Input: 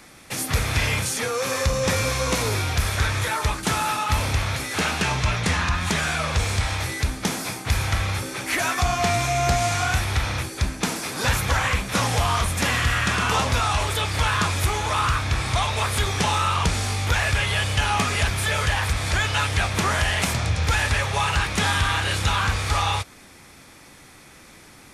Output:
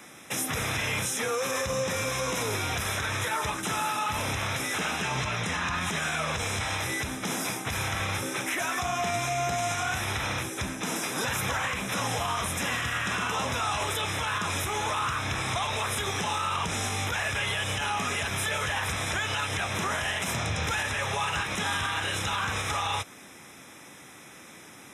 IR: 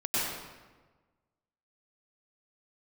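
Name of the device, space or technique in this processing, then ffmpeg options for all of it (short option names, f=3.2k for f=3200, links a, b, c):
PA system with an anti-feedback notch: -af "highpass=140,asuperstop=centerf=4500:order=20:qfactor=5.4,alimiter=limit=-20dB:level=0:latency=1:release=95"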